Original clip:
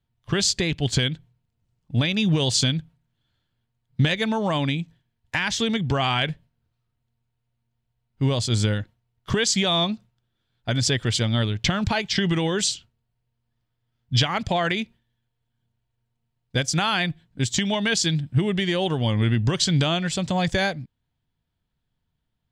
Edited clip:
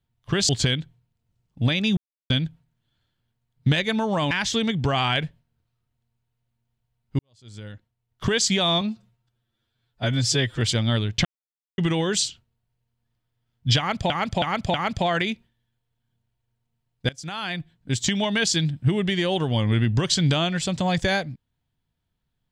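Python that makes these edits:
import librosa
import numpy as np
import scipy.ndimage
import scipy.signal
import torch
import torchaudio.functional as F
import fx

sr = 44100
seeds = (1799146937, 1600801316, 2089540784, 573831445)

y = fx.edit(x, sr, fx.cut(start_s=0.49, length_s=0.33),
    fx.silence(start_s=2.3, length_s=0.33),
    fx.cut(start_s=4.64, length_s=0.73),
    fx.fade_in_span(start_s=8.25, length_s=1.11, curve='qua'),
    fx.stretch_span(start_s=9.87, length_s=1.2, factor=1.5),
    fx.silence(start_s=11.71, length_s=0.53),
    fx.repeat(start_s=14.24, length_s=0.32, count=4),
    fx.fade_in_from(start_s=16.59, length_s=0.94, floor_db=-20.5), tone=tone)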